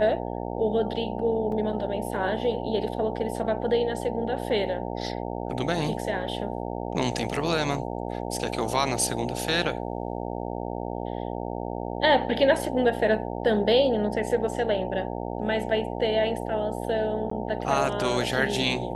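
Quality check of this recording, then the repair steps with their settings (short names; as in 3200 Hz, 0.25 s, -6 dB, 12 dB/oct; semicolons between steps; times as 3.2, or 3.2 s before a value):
buzz 60 Hz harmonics 15 -32 dBFS
1.52 gap 2.6 ms
17.3–17.31 gap 14 ms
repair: de-hum 60 Hz, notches 15; interpolate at 1.52, 2.6 ms; interpolate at 17.3, 14 ms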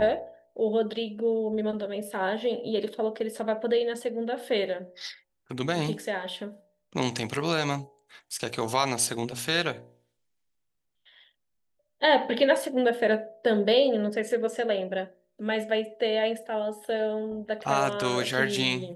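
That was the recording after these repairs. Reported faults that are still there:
none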